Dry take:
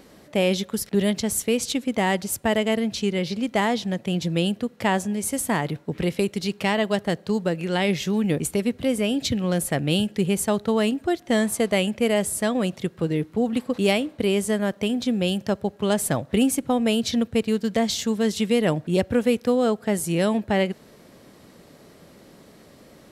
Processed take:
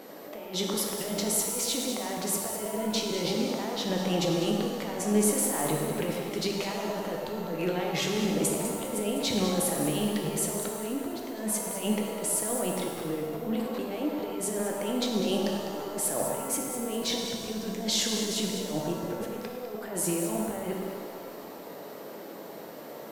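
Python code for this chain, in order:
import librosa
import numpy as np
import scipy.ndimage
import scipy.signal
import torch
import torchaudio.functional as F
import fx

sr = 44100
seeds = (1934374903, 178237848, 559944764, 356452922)

y = scipy.signal.sosfilt(scipy.signal.butter(2, 430.0, 'highpass', fs=sr, output='sos'), x)
y = fx.tilt_shelf(y, sr, db=6.0, hz=810.0)
y = fx.over_compress(y, sr, threshold_db=-30.0, ratio=-0.5)
y = fx.transient(y, sr, attack_db=-7, sustain_db=1)
y = fx.echo_alternate(y, sr, ms=101, hz=1300.0, feedback_pct=51, wet_db=-4.0)
y = y + 10.0 ** (-57.0 / 20.0) * np.sin(2.0 * np.pi * 13000.0 * np.arange(len(y)) / sr)
y = fx.rev_shimmer(y, sr, seeds[0], rt60_s=1.7, semitones=7, shimmer_db=-8, drr_db=1.5)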